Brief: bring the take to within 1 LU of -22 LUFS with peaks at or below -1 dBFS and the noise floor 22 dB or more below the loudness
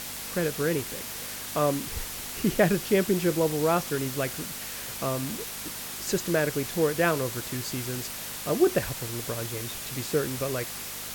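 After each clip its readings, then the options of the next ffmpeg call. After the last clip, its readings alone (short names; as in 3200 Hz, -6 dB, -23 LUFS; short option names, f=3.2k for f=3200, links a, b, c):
hum 50 Hz; harmonics up to 250 Hz; hum level -52 dBFS; noise floor -37 dBFS; noise floor target -50 dBFS; loudness -28.0 LUFS; peak -9.5 dBFS; loudness target -22.0 LUFS
-> -af "bandreject=f=50:t=h:w=4,bandreject=f=100:t=h:w=4,bandreject=f=150:t=h:w=4,bandreject=f=200:t=h:w=4,bandreject=f=250:t=h:w=4"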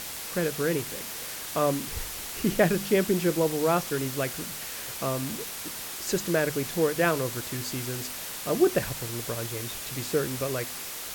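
hum none; noise floor -37 dBFS; noise floor target -51 dBFS
-> -af "afftdn=nr=14:nf=-37"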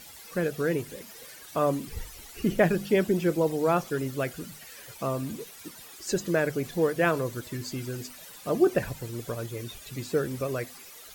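noise floor -47 dBFS; noise floor target -51 dBFS
-> -af "afftdn=nr=6:nf=-47"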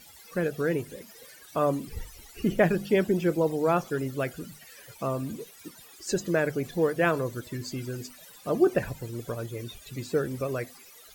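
noise floor -52 dBFS; loudness -28.5 LUFS; peak -9.5 dBFS; loudness target -22.0 LUFS
-> -af "volume=6.5dB"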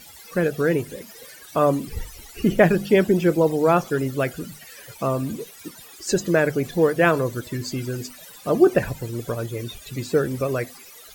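loudness -22.0 LUFS; peak -3.0 dBFS; noise floor -45 dBFS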